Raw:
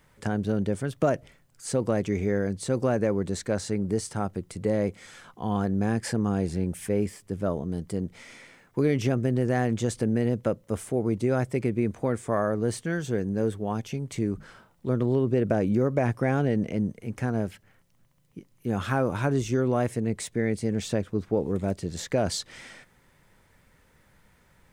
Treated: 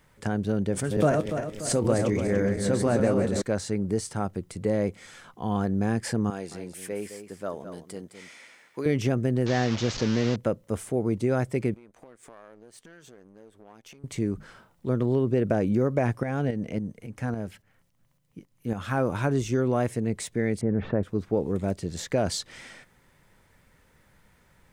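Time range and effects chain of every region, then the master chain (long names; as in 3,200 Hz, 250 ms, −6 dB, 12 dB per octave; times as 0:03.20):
0:00.68–0:03.42: feedback delay that plays each chunk backwards 145 ms, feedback 58%, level −4 dB + double-tracking delay 26 ms −13 dB + background raised ahead of every attack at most 85 dB per second
0:06.30–0:08.86: high-pass filter 750 Hz 6 dB per octave + single-tap delay 212 ms −10 dB
0:09.46–0:10.36: linear delta modulator 32 kbit/s, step −28.5 dBFS + high-shelf EQ 4,100 Hz +5.5 dB
0:11.74–0:14.04: downward compressor 12 to 1, threshold −39 dBFS + power curve on the samples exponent 1.4 + parametric band 89 Hz −13 dB 2.6 octaves
0:16.23–0:18.98: notch filter 380 Hz, Q 8.3 + shaped tremolo saw up 3.6 Hz, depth 60%
0:20.61–0:21.03: low-pass filter 1,600 Hz 24 dB per octave + envelope flattener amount 50%
whole clip: no processing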